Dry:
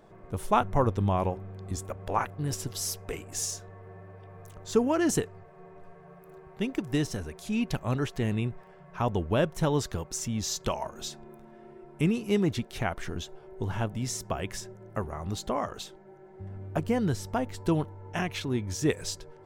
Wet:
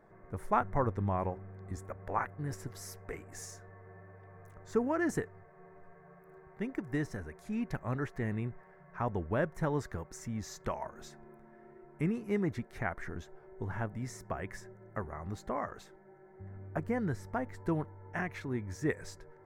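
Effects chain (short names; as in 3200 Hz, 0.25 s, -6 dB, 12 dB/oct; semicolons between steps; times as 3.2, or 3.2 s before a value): resonant high shelf 2400 Hz -7.5 dB, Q 3; gain -6.5 dB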